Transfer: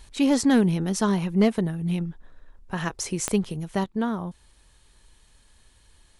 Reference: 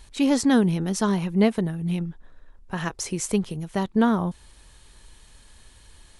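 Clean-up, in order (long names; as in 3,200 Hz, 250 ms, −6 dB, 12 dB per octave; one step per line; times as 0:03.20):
clipped peaks rebuilt −11 dBFS
click removal
level correction +6.5 dB, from 0:03.84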